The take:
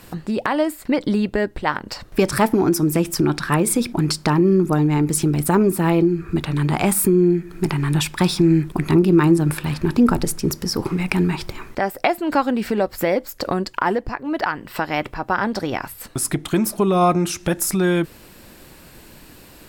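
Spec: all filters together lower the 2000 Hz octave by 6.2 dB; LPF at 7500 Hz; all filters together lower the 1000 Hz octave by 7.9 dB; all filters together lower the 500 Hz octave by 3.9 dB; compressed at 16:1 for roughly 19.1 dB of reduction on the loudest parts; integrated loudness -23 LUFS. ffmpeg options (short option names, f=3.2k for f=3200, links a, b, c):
-af "lowpass=7.5k,equalizer=f=500:t=o:g=-4,equalizer=f=1k:t=o:g=-8,equalizer=f=2k:t=o:g=-5,acompressor=threshold=-31dB:ratio=16,volume=13.5dB"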